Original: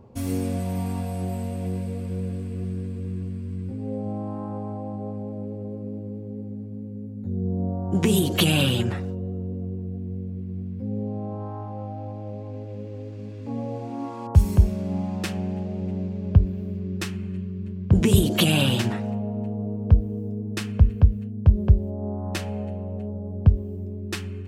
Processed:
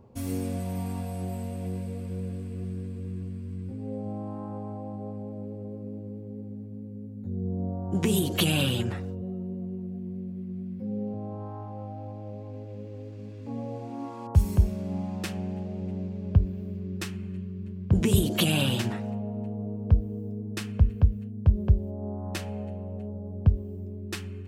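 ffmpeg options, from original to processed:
ffmpeg -i in.wav -filter_complex "[0:a]asettb=1/sr,asplit=3[link_01][link_02][link_03];[link_01]atrim=end=9.214[link_04];[link_02]atrim=start=9.21:end=11.14,asetpts=PTS-STARTPTS,afade=type=in:duration=0.004:curve=qsin,afade=type=out:start_time=1.926:duration=0.004:curve=qsin,aecho=1:1:5.4:0.65,atrim=end_sample=85113[link_05];[link_03]atrim=start=11.136[link_06];[link_04][link_05]acrossfade=duration=0.004:curve1=hsin:curve2=qsin[link_07];[link_07][link_06]acrossfade=duration=0.004:curve1=qsin:curve2=hsin,highshelf=frequency=9900:gain=3.5,volume=-4.5dB" out.wav

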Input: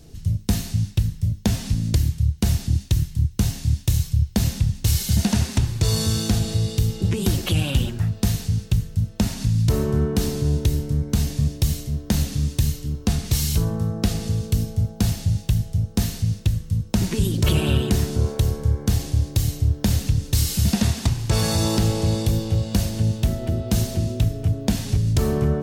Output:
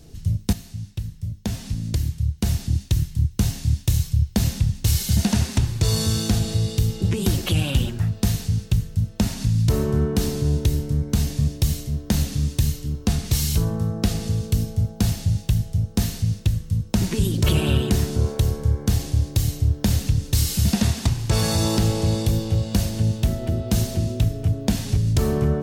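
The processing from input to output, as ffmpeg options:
ffmpeg -i in.wav -filter_complex "[0:a]asplit=2[link_01][link_02];[link_01]atrim=end=0.53,asetpts=PTS-STARTPTS,afade=type=out:start_time=0.526:duration=0.004:curve=hsin:silence=0.237137[link_03];[link_02]atrim=start=0.53,asetpts=PTS-STARTPTS,afade=type=in:duration=2.64:silence=0.237137[link_04];[link_03][link_04]concat=n=2:v=0:a=1" out.wav

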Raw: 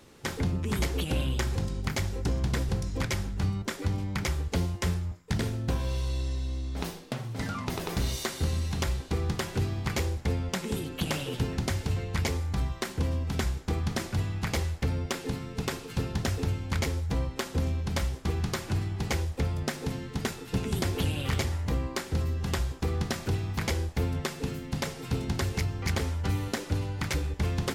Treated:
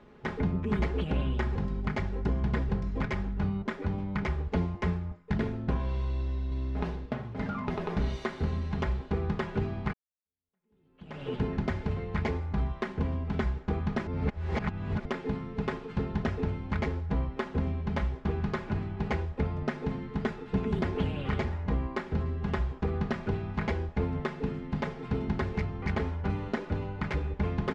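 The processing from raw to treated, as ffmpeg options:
ffmpeg -i in.wav -filter_complex "[0:a]asplit=2[link_01][link_02];[link_02]afade=type=in:start_time=6.09:duration=0.01,afade=type=out:start_time=6.63:duration=0.01,aecho=0:1:420|840|1260:0.562341|0.112468|0.0224937[link_03];[link_01][link_03]amix=inputs=2:normalize=0,asplit=4[link_04][link_05][link_06][link_07];[link_04]atrim=end=9.93,asetpts=PTS-STARTPTS,afade=type=out:start_time=9.926:duration=0.004:curve=hsin[link_08];[link_05]atrim=start=9.93:end=14.072,asetpts=PTS-STARTPTS,afade=type=in:duration=1.35:curve=exp[link_09];[link_06]atrim=start=14.068:end=15.052,asetpts=PTS-STARTPTS,areverse[link_10];[link_07]atrim=start=15.048[link_11];[link_08][link_09]concat=n=2:v=0:a=1[link_12];[link_12][link_10]acrossfade=duration=0.004:curve1=hsin:curve2=hsin[link_13];[link_13][link_11]acrossfade=duration=0.004:curve1=hsin:curve2=hsin,lowpass=1900,aecho=1:1:4.8:0.49" out.wav

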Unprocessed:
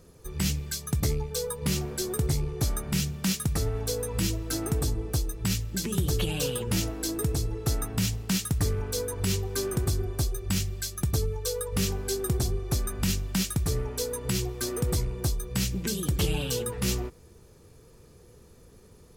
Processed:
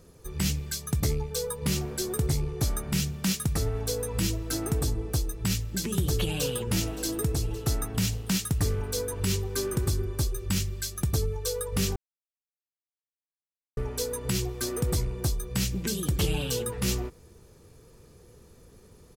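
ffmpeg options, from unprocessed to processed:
ffmpeg -i in.wav -filter_complex "[0:a]asplit=2[link_01][link_02];[link_02]afade=type=in:start_time=6.23:duration=0.01,afade=type=out:start_time=6.64:duration=0.01,aecho=0:1:570|1140|1710|2280|2850|3420|3990|4560|5130:0.177828|0.12448|0.0871357|0.060995|0.0426965|0.0298875|0.0209213|0.0146449|0.0102514[link_03];[link_01][link_03]amix=inputs=2:normalize=0,asettb=1/sr,asplit=3[link_04][link_05][link_06];[link_04]atrim=end=9.194[link_07];[link_05]atrim=start=9.19:end=10.92,asetpts=PTS-STARTPTS,afade=type=in:duration=0.004:curve=qsin,afade=type=out:start_time=1.726:duration=0.004:curve=qsin,asuperstop=centerf=710:order=4:qfactor=6[link_08];[link_06]atrim=start=10.916[link_09];[link_07][link_08]acrossfade=duration=0.004:curve1=hsin:curve2=qsin[link_10];[link_10][link_09]acrossfade=duration=0.004:curve1=qsin:curve2=hsin,asplit=3[link_11][link_12][link_13];[link_11]atrim=end=11.96,asetpts=PTS-STARTPTS,afade=type=out:start_time=11.956:duration=0.004:curve=hsin[link_14];[link_12]atrim=start=11.96:end=13.77,asetpts=PTS-STARTPTS,volume=0[link_15];[link_13]atrim=start=13.77,asetpts=PTS-STARTPTS,afade=type=in:duration=0.004:curve=hsin[link_16];[link_14][link_15][link_16]concat=n=3:v=0:a=1" out.wav

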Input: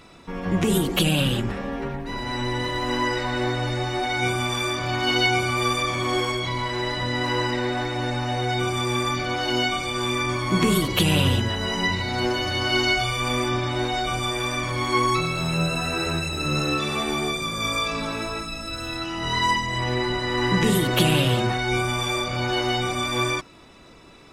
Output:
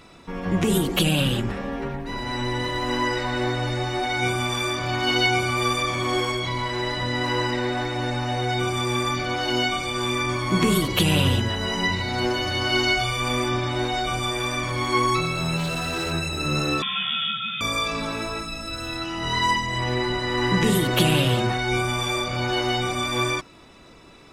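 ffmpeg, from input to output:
ffmpeg -i in.wav -filter_complex "[0:a]asplit=3[link_01][link_02][link_03];[link_01]afade=type=out:start_time=15.56:duration=0.02[link_04];[link_02]asoftclip=type=hard:threshold=-23dB,afade=type=in:start_time=15.56:duration=0.02,afade=type=out:start_time=16.11:duration=0.02[link_05];[link_03]afade=type=in:start_time=16.11:duration=0.02[link_06];[link_04][link_05][link_06]amix=inputs=3:normalize=0,asettb=1/sr,asplit=3[link_07][link_08][link_09];[link_07]atrim=end=16.824[link_10];[link_08]atrim=start=16.82:end=17.61,asetpts=PTS-STARTPTS,afade=type=in:duration=0.004:curve=qsin,afade=type=out:start_time=0.786:duration=0.004:curve=qsin,lowpass=frequency=3100:width_type=q:width=0.5098,lowpass=frequency=3100:width_type=q:width=0.6013,lowpass=frequency=3100:width_type=q:width=0.9,lowpass=frequency=3100:width_type=q:width=2.563,afreqshift=-3700[link_11];[link_09]atrim=start=17.606[link_12];[link_10][link_11]acrossfade=duration=0.004:curve1=hsin:curve2=qsin[link_13];[link_13][link_12]acrossfade=duration=0.004:curve1=qsin:curve2=hsin" out.wav

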